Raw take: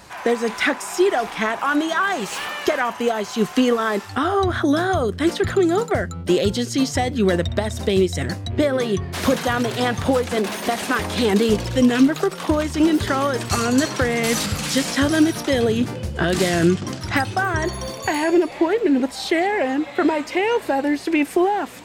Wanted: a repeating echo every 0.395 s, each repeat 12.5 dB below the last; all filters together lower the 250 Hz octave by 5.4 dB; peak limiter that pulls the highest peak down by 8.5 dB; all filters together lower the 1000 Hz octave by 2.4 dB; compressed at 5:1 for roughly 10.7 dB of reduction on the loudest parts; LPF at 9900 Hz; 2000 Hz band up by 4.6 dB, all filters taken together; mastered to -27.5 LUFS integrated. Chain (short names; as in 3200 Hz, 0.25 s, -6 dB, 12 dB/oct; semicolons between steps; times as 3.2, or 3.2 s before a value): LPF 9900 Hz; bell 250 Hz -7 dB; bell 1000 Hz -5 dB; bell 2000 Hz +7.5 dB; compressor 5:1, threshold -24 dBFS; limiter -18 dBFS; feedback echo 0.395 s, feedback 24%, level -12.5 dB; gain +0.5 dB